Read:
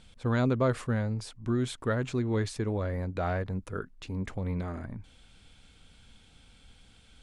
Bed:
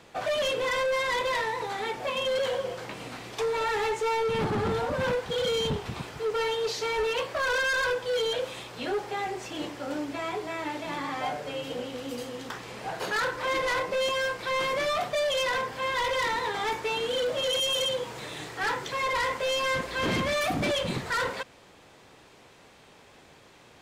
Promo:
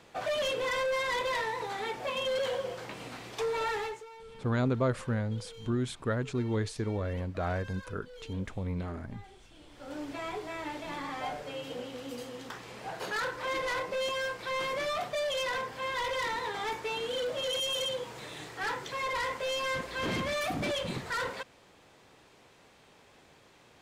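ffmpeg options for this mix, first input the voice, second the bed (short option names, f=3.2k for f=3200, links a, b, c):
-filter_complex "[0:a]adelay=4200,volume=-2dB[a];[1:a]volume=14dB,afade=t=out:st=3.68:d=0.38:silence=0.112202,afade=t=in:st=9.66:d=0.43:silence=0.133352[b];[a][b]amix=inputs=2:normalize=0"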